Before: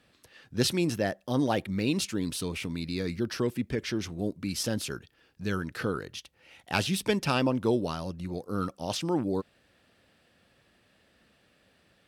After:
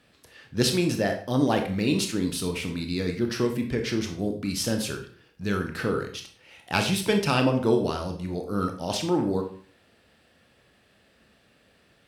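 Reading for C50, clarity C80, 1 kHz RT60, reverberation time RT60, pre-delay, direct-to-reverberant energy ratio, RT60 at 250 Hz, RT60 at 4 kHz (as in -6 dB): 8.5 dB, 13.0 dB, 0.50 s, 0.50 s, 22 ms, 4.0 dB, 0.55 s, 0.40 s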